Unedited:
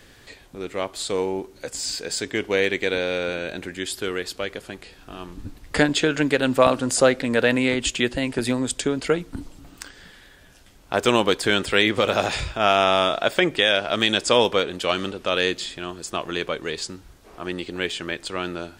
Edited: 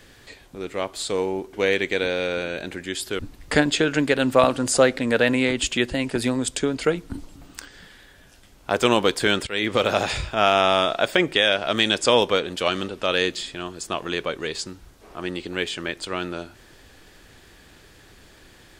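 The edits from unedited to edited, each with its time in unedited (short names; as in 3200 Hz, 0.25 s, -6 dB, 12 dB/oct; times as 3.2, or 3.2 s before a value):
1.53–2.44 cut
4.1–5.42 cut
11.7–11.98 fade in, from -19 dB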